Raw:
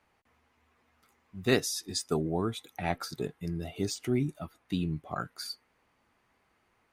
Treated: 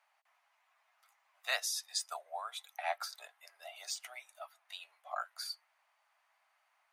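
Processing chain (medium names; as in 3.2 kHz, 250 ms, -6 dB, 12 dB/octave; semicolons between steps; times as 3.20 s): steep high-pass 610 Hz 72 dB/octave; hard clipper -17 dBFS, distortion -44 dB; trim -2.5 dB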